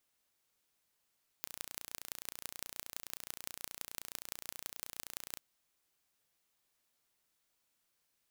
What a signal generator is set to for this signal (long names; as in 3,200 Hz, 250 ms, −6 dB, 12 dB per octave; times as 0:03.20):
impulse train 29.5 per second, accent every 5, −11.5 dBFS 3.96 s